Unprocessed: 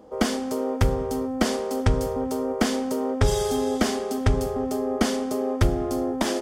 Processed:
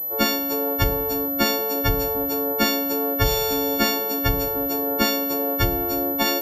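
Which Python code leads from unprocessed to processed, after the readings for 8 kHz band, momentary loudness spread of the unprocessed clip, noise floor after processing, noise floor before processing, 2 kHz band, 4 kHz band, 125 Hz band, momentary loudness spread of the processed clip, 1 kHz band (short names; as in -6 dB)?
+2.0 dB, 3 LU, -26 dBFS, -30 dBFS, +6.5 dB, +8.0 dB, -2.5 dB, 2 LU, +3.0 dB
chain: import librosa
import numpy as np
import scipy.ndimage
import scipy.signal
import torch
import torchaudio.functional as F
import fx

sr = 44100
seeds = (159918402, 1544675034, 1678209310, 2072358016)

y = fx.freq_snap(x, sr, grid_st=4)
y = fx.pwm(y, sr, carrier_hz=12000.0)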